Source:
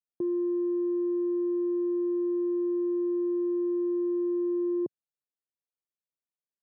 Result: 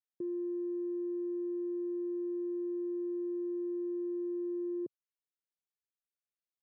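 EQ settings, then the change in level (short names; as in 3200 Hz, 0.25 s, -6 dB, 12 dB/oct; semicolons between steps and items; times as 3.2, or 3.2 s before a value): Butterworth band-stop 830 Hz, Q 1.3; air absorption 95 m; low shelf 230 Hz -5.5 dB; -6.0 dB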